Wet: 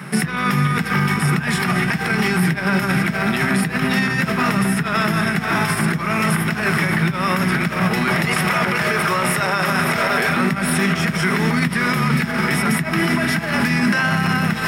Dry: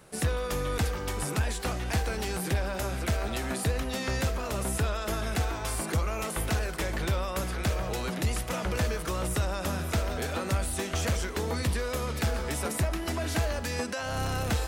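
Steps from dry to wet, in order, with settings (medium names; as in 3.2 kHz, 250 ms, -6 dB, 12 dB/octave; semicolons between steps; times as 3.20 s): 8.08–10.30 s: resonant low shelf 340 Hz -8.5 dB, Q 1.5; echo that smears into a reverb 523 ms, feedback 70%, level -11 dB; compressor with a negative ratio -33 dBFS, ratio -1; graphic EQ 125/500/1000/2000 Hz +11/-12/-3/+5 dB; reverberation, pre-delay 3 ms, DRR 11 dB; loudness maximiser +19 dB; trim -8 dB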